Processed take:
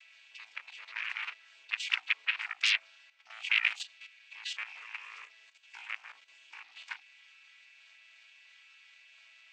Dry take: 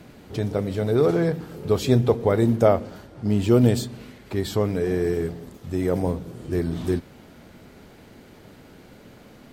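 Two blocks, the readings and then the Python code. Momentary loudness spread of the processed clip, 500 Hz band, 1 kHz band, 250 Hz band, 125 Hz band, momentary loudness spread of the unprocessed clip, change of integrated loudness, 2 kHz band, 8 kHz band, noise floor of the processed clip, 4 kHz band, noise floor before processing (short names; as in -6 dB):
24 LU, under -40 dB, -16.5 dB, under -40 dB, under -40 dB, 13 LU, -10.5 dB, +6.5 dB, -8.0 dB, -60 dBFS, +3.5 dB, -49 dBFS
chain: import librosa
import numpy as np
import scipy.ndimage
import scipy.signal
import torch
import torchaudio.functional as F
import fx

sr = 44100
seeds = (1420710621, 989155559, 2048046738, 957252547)

y = fx.chord_vocoder(x, sr, chord='major triad', root=57)
y = fx.fold_sine(y, sr, drive_db=18, ceiling_db=-5.5)
y = fx.ladder_highpass(y, sr, hz=2200.0, resonance_pct=60)
y = fx.level_steps(y, sr, step_db=11)
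y = y * 10.0 ** (-4.0 / 20.0)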